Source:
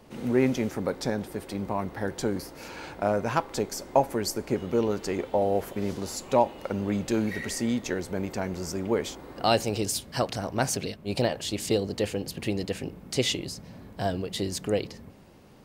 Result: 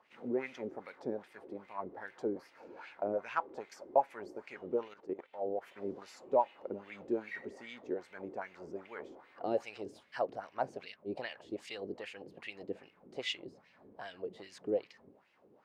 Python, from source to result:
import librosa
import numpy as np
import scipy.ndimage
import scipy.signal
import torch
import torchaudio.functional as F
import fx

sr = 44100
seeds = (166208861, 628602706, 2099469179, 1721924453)

y = fx.level_steps(x, sr, step_db=14, at=(4.88, 5.66))
y = fx.wah_lfo(y, sr, hz=2.5, low_hz=340.0, high_hz=2500.0, q=2.6)
y = F.gain(torch.from_numpy(y), -3.0).numpy()